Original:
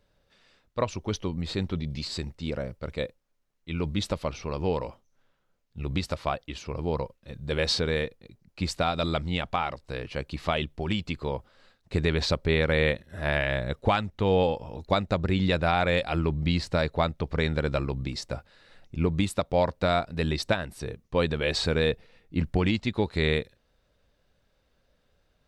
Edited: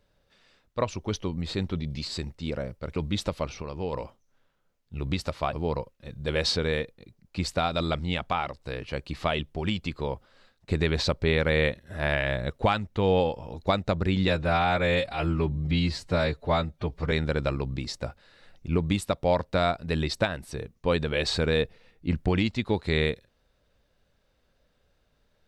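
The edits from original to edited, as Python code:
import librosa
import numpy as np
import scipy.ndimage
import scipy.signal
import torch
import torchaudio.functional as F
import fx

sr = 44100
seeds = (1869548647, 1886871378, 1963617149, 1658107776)

y = fx.edit(x, sr, fx.cut(start_s=2.96, length_s=0.84),
    fx.clip_gain(start_s=4.46, length_s=0.31, db=-5.0),
    fx.cut(start_s=6.37, length_s=0.39),
    fx.stretch_span(start_s=15.51, length_s=1.89, factor=1.5), tone=tone)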